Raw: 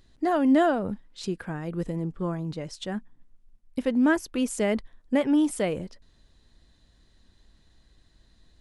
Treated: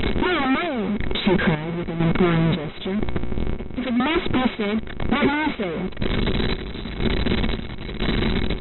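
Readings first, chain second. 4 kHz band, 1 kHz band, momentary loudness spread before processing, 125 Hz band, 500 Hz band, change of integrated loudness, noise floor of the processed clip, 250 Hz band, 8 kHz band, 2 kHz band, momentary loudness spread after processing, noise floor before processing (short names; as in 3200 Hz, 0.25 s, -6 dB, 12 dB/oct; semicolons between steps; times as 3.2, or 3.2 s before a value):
+14.0 dB, +6.0 dB, 14 LU, +12.0 dB, +3.5 dB, +3.5 dB, -31 dBFS, +4.0 dB, under -35 dB, +10.0 dB, 8 LU, -62 dBFS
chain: delta modulation 64 kbps, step -21.5 dBFS; hum 60 Hz, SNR 28 dB; companded quantiser 4-bit; chopper 1 Hz, depth 65%, duty 55%; wrapped overs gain 22 dB; brick-wall FIR low-pass 4000 Hz; small resonant body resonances 220/370/2200 Hz, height 11 dB, ringing for 45 ms; gain +4 dB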